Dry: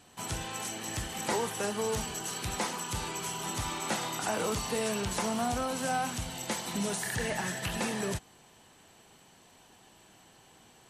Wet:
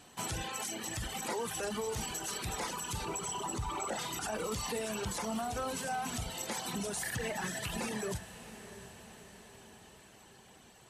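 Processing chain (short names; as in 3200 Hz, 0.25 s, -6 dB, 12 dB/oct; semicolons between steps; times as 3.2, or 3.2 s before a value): 3.05–3.99 formant sharpening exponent 2; de-hum 50.77 Hz, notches 5; limiter -28 dBFS, peak gain reduction 8.5 dB; reverb removal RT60 1.6 s; on a send: diffused feedback echo 0.676 s, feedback 57%, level -13.5 dB; on the sum: gain +2 dB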